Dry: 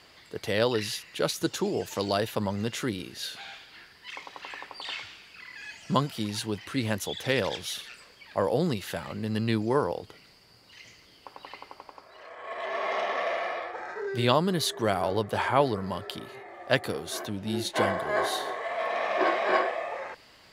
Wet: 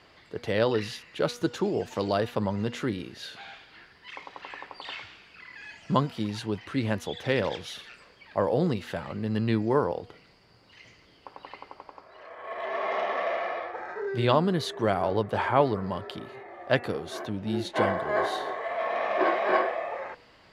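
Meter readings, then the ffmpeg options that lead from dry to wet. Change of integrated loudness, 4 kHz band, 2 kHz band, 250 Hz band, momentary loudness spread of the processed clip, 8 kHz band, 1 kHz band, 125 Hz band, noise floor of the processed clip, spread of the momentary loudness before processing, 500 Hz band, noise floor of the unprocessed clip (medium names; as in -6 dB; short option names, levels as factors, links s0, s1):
+0.5 dB, -4.5 dB, -1.0 dB, +1.5 dB, 19 LU, -9.5 dB, +0.5 dB, +1.5 dB, -57 dBFS, 18 LU, +1.0 dB, -56 dBFS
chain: -af "aemphasis=mode=reproduction:type=75kf,bandreject=f=241.1:t=h:w=4,bandreject=f=482.2:t=h:w=4,bandreject=f=723.3:t=h:w=4,bandreject=f=964.4:t=h:w=4,bandreject=f=1205.5:t=h:w=4,bandreject=f=1446.6:t=h:w=4,bandreject=f=1687.7:t=h:w=4,bandreject=f=1928.8:t=h:w=4,bandreject=f=2169.9:t=h:w=4,bandreject=f=2411:t=h:w=4,bandreject=f=2652.1:t=h:w=4,volume=1.19"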